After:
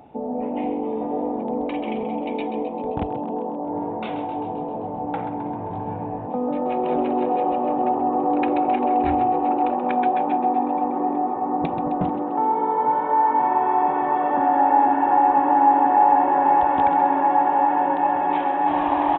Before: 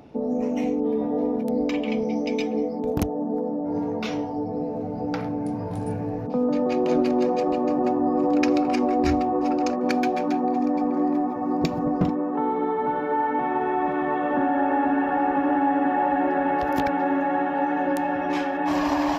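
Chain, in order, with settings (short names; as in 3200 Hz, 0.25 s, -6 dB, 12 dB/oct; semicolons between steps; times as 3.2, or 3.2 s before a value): bell 810 Hz +13 dB 0.48 oct; frequency-shifting echo 0.131 s, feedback 64%, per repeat +48 Hz, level -10.5 dB; downsampling 8000 Hz; gain -3.5 dB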